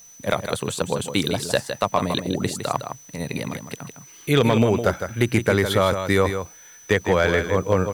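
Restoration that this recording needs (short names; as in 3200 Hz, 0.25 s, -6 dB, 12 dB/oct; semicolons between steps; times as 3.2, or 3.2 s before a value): clip repair -7.5 dBFS; notch 6000 Hz, Q 30; expander -38 dBFS, range -21 dB; inverse comb 0.159 s -8.5 dB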